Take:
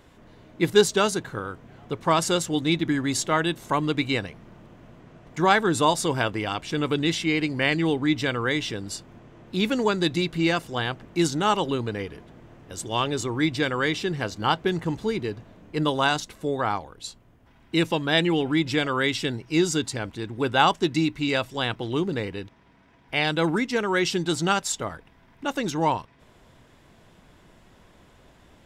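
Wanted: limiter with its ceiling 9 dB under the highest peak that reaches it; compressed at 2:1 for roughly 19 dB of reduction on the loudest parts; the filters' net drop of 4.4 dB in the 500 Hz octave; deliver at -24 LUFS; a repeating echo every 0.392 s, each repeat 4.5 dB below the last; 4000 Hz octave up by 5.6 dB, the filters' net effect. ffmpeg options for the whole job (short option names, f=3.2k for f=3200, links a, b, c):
-af "equalizer=f=500:t=o:g=-6,equalizer=f=4k:t=o:g=7,acompressor=threshold=-50dB:ratio=2,alimiter=level_in=7dB:limit=-24dB:level=0:latency=1,volume=-7dB,aecho=1:1:392|784|1176|1568|1960|2352|2744|3136|3528:0.596|0.357|0.214|0.129|0.0772|0.0463|0.0278|0.0167|0.01,volume=17dB"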